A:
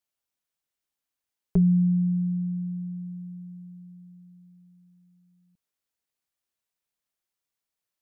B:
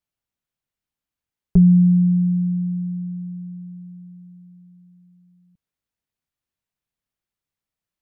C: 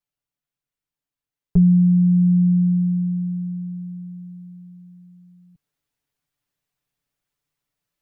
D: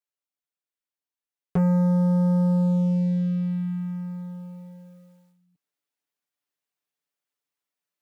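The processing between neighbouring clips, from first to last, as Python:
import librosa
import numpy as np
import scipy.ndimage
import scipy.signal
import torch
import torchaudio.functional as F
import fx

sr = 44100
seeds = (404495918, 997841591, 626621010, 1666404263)

y1 = fx.bass_treble(x, sr, bass_db=10, treble_db=-5)
y2 = y1 + 0.68 * np.pad(y1, (int(6.9 * sr / 1000.0), 0))[:len(y1)]
y2 = fx.rider(y2, sr, range_db=4, speed_s=0.5)
y3 = scipy.signal.sosfilt(scipy.signal.butter(2, 300.0, 'highpass', fs=sr, output='sos'), y2)
y3 = fx.leveller(y3, sr, passes=3)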